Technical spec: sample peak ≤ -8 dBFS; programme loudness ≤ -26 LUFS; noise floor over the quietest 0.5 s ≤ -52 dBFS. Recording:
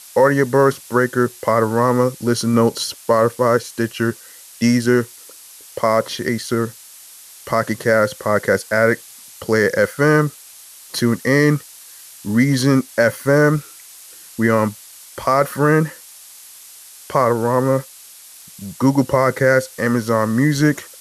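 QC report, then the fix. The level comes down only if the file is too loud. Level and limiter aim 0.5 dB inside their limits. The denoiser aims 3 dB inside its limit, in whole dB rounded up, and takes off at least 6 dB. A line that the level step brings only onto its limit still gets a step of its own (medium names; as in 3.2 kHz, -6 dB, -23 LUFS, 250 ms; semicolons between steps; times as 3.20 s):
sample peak -3.0 dBFS: fail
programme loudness -17.5 LUFS: fail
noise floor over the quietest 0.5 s -42 dBFS: fail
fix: noise reduction 6 dB, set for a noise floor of -42 dBFS; trim -9 dB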